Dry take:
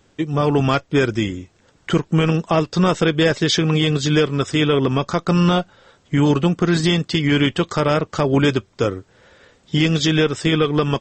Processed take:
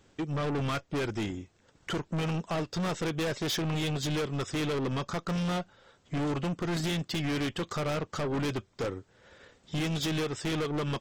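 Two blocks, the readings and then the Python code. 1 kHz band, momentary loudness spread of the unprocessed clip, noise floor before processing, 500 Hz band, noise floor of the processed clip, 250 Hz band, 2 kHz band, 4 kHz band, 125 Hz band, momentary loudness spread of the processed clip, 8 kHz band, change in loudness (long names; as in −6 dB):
−12.5 dB, 7 LU, −58 dBFS, −14.0 dB, −66 dBFS, −14.0 dB, −13.0 dB, −13.0 dB, −13.0 dB, 6 LU, −9.5 dB, −13.5 dB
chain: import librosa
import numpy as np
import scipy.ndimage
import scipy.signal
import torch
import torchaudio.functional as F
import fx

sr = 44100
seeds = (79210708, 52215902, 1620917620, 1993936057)

y = fx.transient(x, sr, attack_db=0, sustain_db=-4)
y = 10.0 ** (-23.0 / 20.0) * np.tanh(y / 10.0 ** (-23.0 / 20.0))
y = F.gain(torch.from_numpy(y), -5.0).numpy()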